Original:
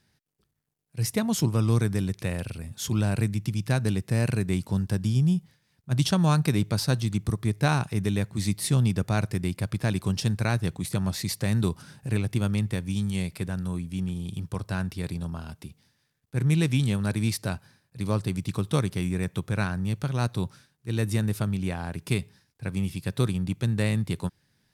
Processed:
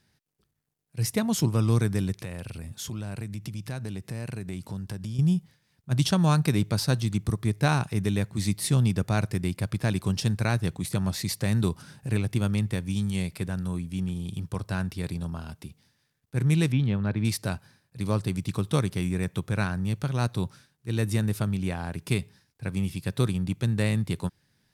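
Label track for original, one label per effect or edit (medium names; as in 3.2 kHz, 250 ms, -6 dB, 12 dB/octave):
2.150000	5.190000	compression 3:1, threshold -33 dBFS
16.720000	17.250000	distance through air 310 m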